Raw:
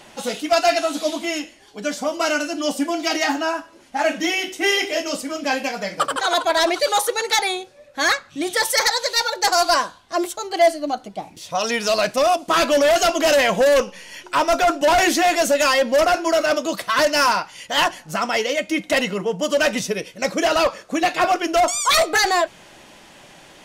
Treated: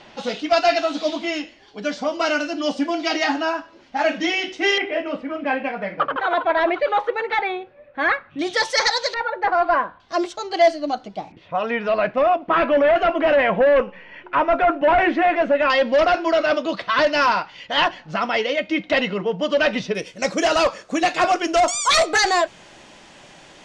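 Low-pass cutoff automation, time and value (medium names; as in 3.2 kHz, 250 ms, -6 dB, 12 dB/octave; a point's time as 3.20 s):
low-pass 24 dB/octave
5.1 kHz
from 4.78 s 2.5 kHz
from 8.39 s 5.7 kHz
from 9.14 s 2.1 kHz
from 10.00 s 5.6 kHz
from 11.32 s 2.4 kHz
from 15.70 s 4.2 kHz
from 19.95 s 8.3 kHz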